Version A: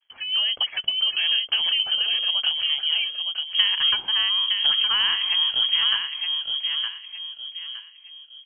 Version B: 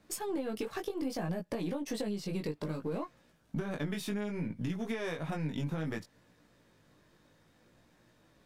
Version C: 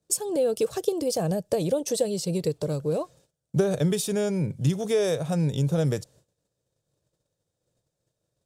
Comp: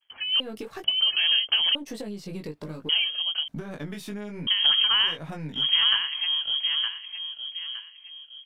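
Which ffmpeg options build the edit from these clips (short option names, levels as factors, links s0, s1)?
-filter_complex "[1:a]asplit=4[s0][s1][s2][s3];[0:a]asplit=5[s4][s5][s6][s7][s8];[s4]atrim=end=0.402[s9];[s0]atrim=start=0.398:end=0.842[s10];[s5]atrim=start=0.838:end=1.752[s11];[s1]atrim=start=1.748:end=2.892[s12];[s6]atrim=start=2.888:end=3.482[s13];[s2]atrim=start=3.478:end=4.472[s14];[s7]atrim=start=4.468:end=5.18[s15];[s3]atrim=start=5.02:end=5.68[s16];[s8]atrim=start=5.52[s17];[s9][s10]acrossfade=d=0.004:c1=hsin:c2=hsin[s18];[s18][s11]acrossfade=d=0.004:c1=hsin:c2=hsin[s19];[s19][s12]acrossfade=d=0.004:c1=hsin:c2=hsin[s20];[s20][s13]acrossfade=d=0.004:c1=hsin:c2=hsin[s21];[s21][s14]acrossfade=d=0.004:c1=hsin:c2=hsin[s22];[s22][s15]acrossfade=d=0.004:c1=hsin:c2=hsin[s23];[s23][s16]acrossfade=d=0.16:c1=tri:c2=tri[s24];[s24][s17]acrossfade=d=0.16:c1=tri:c2=tri"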